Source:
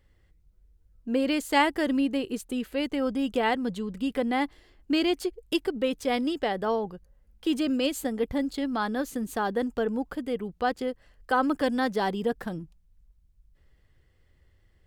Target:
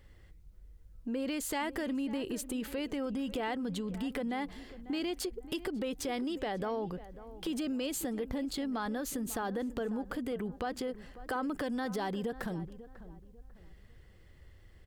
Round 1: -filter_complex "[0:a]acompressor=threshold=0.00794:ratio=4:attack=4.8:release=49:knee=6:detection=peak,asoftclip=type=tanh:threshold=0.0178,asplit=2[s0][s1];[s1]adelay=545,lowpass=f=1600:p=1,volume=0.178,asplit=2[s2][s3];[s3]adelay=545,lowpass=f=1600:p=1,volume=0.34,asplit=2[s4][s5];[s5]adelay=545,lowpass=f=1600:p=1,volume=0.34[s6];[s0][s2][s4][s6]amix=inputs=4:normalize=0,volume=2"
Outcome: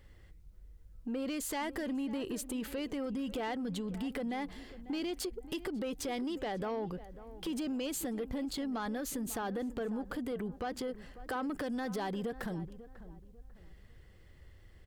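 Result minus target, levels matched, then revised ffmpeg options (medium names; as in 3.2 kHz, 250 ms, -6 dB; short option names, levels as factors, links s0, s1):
saturation: distortion +19 dB
-filter_complex "[0:a]acompressor=threshold=0.00794:ratio=4:attack=4.8:release=49:knee=6:detection=peak,asoftclip=type=tanh:threshold=0.0668,asplit=2[s0][s1];[s1]adelay=545,lowpass=f=1600:p=1,volume=0.178,asplit=2[s2][s3];[s3]adelay=545,lowpass=f=1600:p=1,volume=0.34,asplit=2[s4][s5];[s5]adelay=545,lowpass=f=1600:p=1,volume=0.34[s6];[s0][s2][s4][s6]amix=inputs=4:normalize=0,volume=2"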